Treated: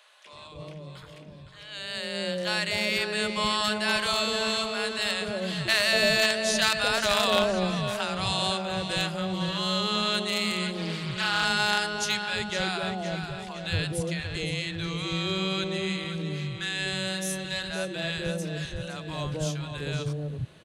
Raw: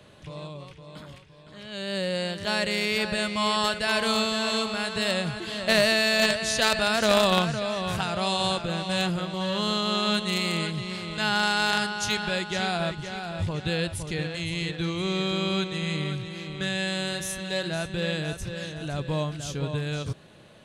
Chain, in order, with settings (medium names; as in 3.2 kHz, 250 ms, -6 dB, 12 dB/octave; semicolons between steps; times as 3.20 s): three bands offset in time highs, mids, lows 250/320 ms, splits 240/740 Hz; 10.74–11.45 s: loudspeaker Doppler distortion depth 0.28 ms